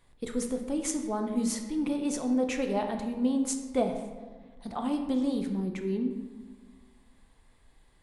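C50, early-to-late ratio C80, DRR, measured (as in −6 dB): 6.5 dB, 8.0 dB, 4.0 dB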